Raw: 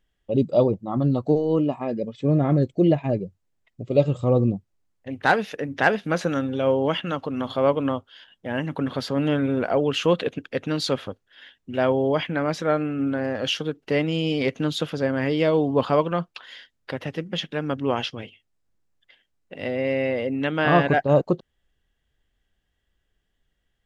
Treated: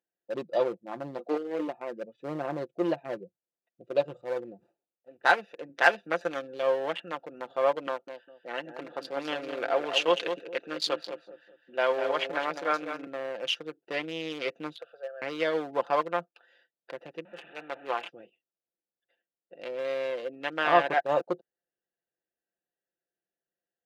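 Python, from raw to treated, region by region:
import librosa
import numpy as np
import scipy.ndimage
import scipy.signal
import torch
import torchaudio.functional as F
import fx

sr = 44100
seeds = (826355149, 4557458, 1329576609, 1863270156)

y = fx.chain(x, sr, fx.steep_highpass(hz=170.0, slope=96),
    fx.doubler(ms=20.0, db=-5.0), at=(1.18, 1.68))
y = fx.chain(y, sr, fx.median_filter(points=25),
    fx.low_shelf(hz=410.0, db=-9.5),
    fx.sustainer(db_per_s=110.0), at=(4.21, 5.17))
y = fx.chain(y, sr, fx.highpass(hz=75.0, slope=24),
    fx.high_shelf(hz=3000.0, db=6.0), at=(5.69, 6.63))
y = fx.chain(y, sr, fx.highpass(hz=180.0, slope=12),
    fx.peak_eq(hz=2700.0, db=4.0, octaves=2.0),
    fx.echo_feedback(ms=202, feedback_pct=32, wet_db=-6.5), at=(7.87, 13.07))
y = fx.chain(y, sr, fx.highpass(hz=650.0, slope=12),
    fx.high_shelf(hz=5100.0, db=-9.5),
    fx.fixed_phaser(hz=1400.0, stages=8), at=(14.76, 15.22))
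y = fx.chain(y, sr, fx.delta_mod(bps=16000, step_db=-25.5),
    fx.tilt_eq(slope=3.0),
    fx.band_widen(depth_pct=40), at=(17.25, 18.09))
y = fx.wiener(y, sr, points=41)
y = scipy.signal.sosfilt(scipy.signal.butter(2, 590.0, 'highpass', fs=sr, output='sos'), y)
y = y + 0.5 * np.pad(y, (int(5.8 * sr / 1000.0), 0))[:len(y)]
y = F.gain(torch.from_numpy(y), -2.0).numpy()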